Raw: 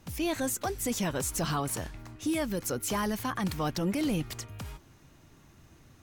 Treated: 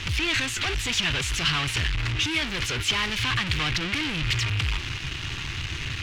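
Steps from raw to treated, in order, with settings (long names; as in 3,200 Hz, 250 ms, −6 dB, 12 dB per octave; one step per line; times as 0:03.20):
in parallel at −9 dB: fuzz pedal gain 60 dB, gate −59 dBFS
on the sum: drawn EQ curve 120 Hz 0 dB, 200 Hz −13 dB, 380 Hz −8 dB, 570 Hz −16 dB, 2,800 Hz +10 dB, 7,100 Hz −7 dB, 15,000 Hz −25 dB
level −2.5 dB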